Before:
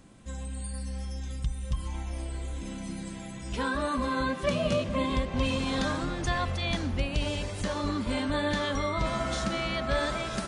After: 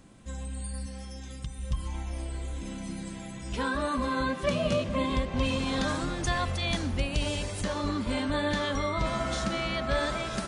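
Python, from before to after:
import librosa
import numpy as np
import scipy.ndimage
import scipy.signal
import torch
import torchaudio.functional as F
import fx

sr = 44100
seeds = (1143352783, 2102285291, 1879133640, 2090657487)

y = fx.highpass(x, sr, hz=130.0, slope=6, at=(0.86, 1.59))
y = fx.high_shelf(y, sr, hz=8300.0, db=11.0, at=(5.88, 7.61))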